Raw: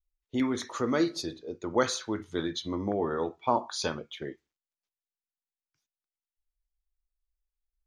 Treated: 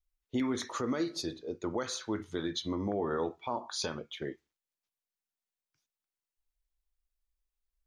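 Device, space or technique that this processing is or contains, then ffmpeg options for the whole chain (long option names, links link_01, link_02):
stacked limiters: -af "alimiter=limit=-18dB:level=0:latency=1:release=437,alimiter=limit=-23dB:level=0:latency=1:release=107"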